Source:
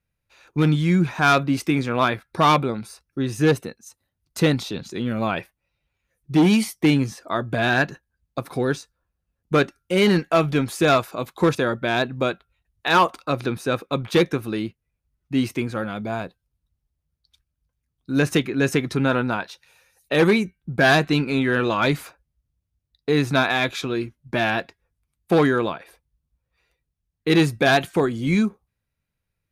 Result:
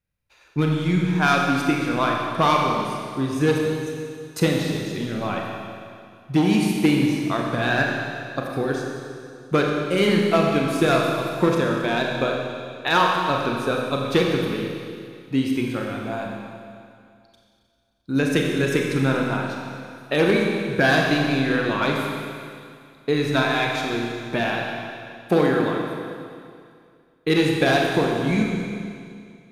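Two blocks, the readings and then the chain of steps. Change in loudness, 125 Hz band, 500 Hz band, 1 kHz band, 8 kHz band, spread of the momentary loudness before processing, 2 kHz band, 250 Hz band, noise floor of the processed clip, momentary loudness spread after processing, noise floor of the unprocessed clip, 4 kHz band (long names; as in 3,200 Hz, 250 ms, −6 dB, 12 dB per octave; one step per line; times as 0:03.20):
−0.5 dB, −1.0 dB, +0.5 dB, 0.0 dB, −1.0 dB, 11 LU, −0.5 dB, 0.0 dB, −56 dBFS, 15 LU, −80 dBFS, 0.0 dB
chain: transient designer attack +5 dB, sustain 0 dB
four-comb reverb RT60 2.3 s, combs from 30 ms, DRR −0.5 dB
level −5 dB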